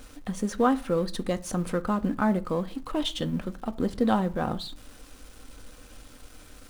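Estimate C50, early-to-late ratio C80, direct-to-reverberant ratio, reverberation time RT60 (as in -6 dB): 21.0 dB, 25.5 dB, 8.5 dB, 0.45 s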